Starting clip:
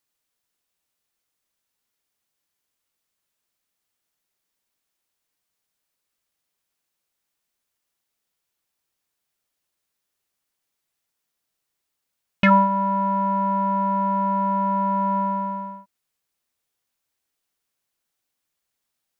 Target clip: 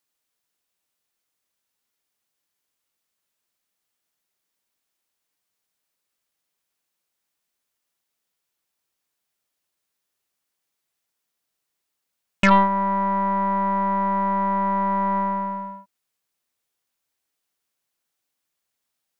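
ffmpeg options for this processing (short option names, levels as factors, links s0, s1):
-af "lowshelf=f=94:g=-6,aeval=exprs='0.531*(cos(1*acos(clip(val(0)/0.531,-1,1)))-cos(1*PI/2))+0.075*(cos(4*acos(clip(val(0)/0.531,-1,1)))-cos(4*PI/2))':c=same"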